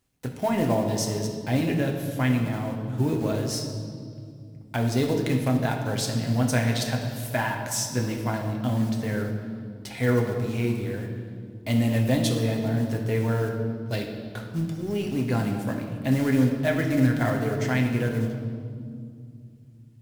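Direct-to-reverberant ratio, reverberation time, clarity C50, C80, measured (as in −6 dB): 1.0 dB, 2.3 s, 5.0 dB, 6.5 dB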